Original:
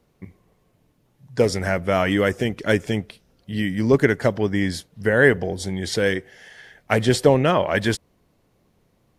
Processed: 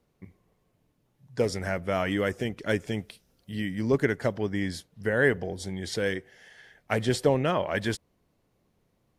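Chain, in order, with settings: 2.97–3.55 high shelf 3700 Hz -> 6700 Hz +10 dB; gain -7.5 dB

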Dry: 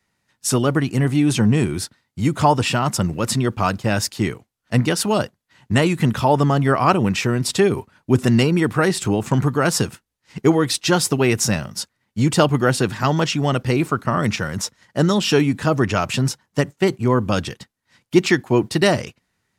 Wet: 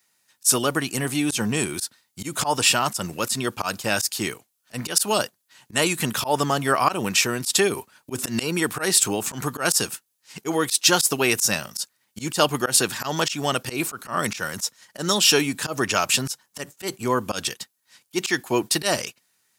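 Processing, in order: RIAA curve recording; notch 2000 Hz, Q 18; auto swell 0.107 s; gain -1 dB

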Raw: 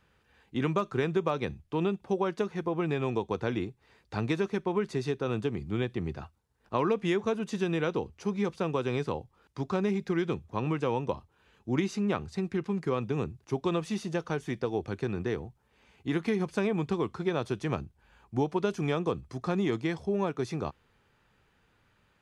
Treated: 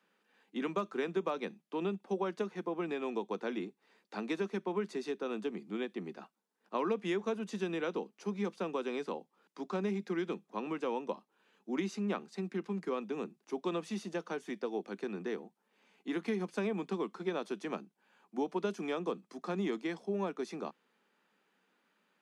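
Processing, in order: steep high-pass 180 Hz 72 dB/oct; gain -5.5 dB

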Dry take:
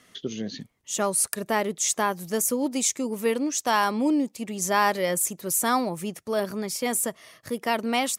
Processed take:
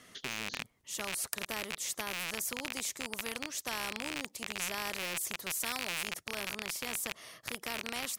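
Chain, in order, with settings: rattling part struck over -45 dBFS, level -11 dBFS; 5.6–6.08 tilt shelf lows -4.5 dB; spectral compressor 2:1; gain -5 dB

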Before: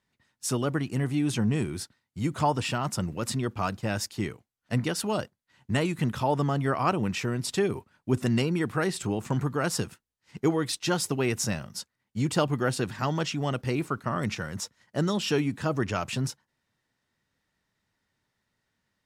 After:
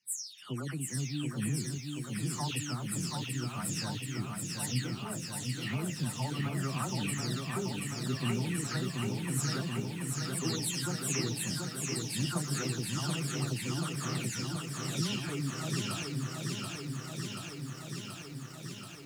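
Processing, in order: spectral delay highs early, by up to 0.362 s; HPF 120 Hz 24 dB/oct; bell 620 Hz -14.5 dB 2.8 oct; lo-fi delay 0.731 s, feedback 80%, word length 10-bit, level -3.5 dB; gain -1.5 dB

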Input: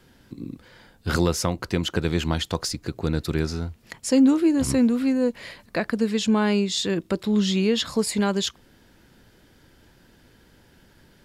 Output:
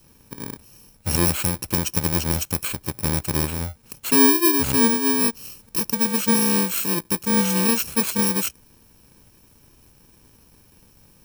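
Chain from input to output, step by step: FFT order left unsorted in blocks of 64 samples; gain +1.5 dB

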